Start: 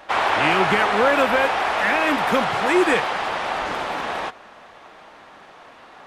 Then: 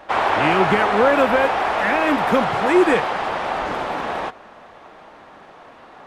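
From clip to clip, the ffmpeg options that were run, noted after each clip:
-af "tiltshelf=f=1.4k:g=4"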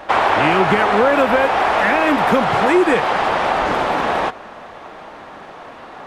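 -af "acompressor=threshold=-21dB:ratio=2.5,volume=7.5dB"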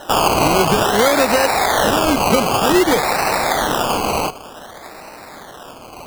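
-af "acrusher=samples=19:mix=1:aa=0.000001:lfo=1:lforange=11.4:lforate=0.54"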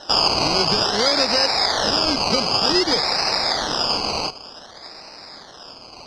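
-af "lowpass=f=5k:t=q:w=13,volume=-7.5dB"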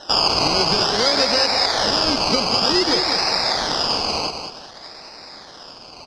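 -af "aecho=1:1:197|394|591:0.422|0.105|0.0264"

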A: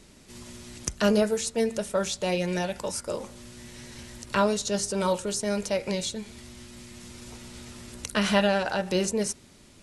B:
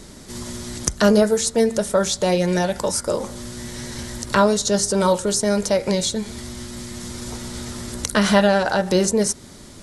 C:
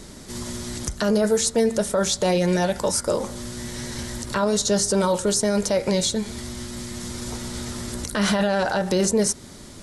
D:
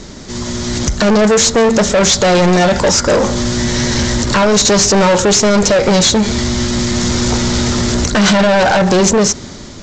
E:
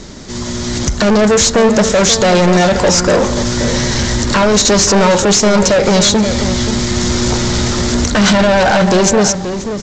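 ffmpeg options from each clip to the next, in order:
-filter_complex "[0:a]equalizer=f=2.6k:w=3.2:g=-9,asplit=2[a][b];[b]acompressor=threshold=-34dB:ratio=6,volume=1.5dB[c];[a][c]amix=inputs=2:normalize=0,volume=5.5dB"
-af "alimiter=limit=-12dB:level=0:latency=1:release=12"
-af "dynaudnorm=f=180:g=9:m=11.5dB,aresample=16000,asoftclip=type=tanh:threshold=-17.5dB,aresample=44100,acontrast=32,volume=4.5dB"
-filter_complex "[0:a]asplit=2[a][b];[b]adelay=530.6,volume=-9dB,highshelf=f=4k:g=-11.9[c];[a][c]amix=inputs=2:normalize=0"

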